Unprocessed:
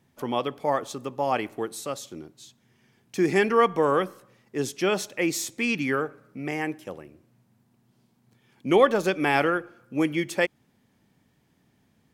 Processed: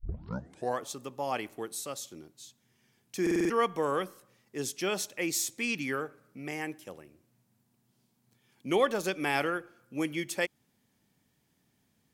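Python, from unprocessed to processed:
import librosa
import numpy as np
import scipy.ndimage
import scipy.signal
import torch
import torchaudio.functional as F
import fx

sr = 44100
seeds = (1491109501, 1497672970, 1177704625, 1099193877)

y = fx.tape_start_head(x, sr, length_s=0.8)
y = fx.high_shelf(y, sr, hz=3800.0, db=10.0)
y = fx.buffer_glitch(y, sr, at_s=(3.22,), block=2048, repeats=5)
y = y * librosa.db_to_amplitude(-8.0)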